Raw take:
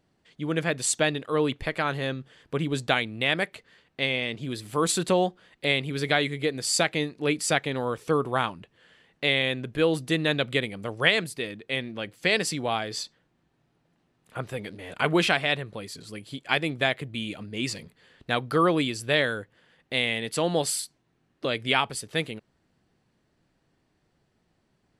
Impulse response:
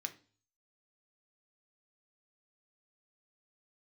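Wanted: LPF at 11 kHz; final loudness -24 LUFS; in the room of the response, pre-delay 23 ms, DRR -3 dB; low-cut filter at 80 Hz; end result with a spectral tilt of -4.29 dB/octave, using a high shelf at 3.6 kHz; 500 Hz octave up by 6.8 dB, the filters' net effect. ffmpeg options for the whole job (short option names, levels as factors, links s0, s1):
-filter_complex "[0:a]highpass=80,lowpass=11000,equalizer=f=500:t=o:g=8,highshelf=f=3600:g=-5.5,asplit=2[s0][s1];[1:a]atrim=start_sample=2205,adelay=23[s2];[s1][s2]afir=irnorm=-1:irlink=0,volume=1.68[s3];[s0][s3]amix=inputs=2:normalize=0,volume=0.668"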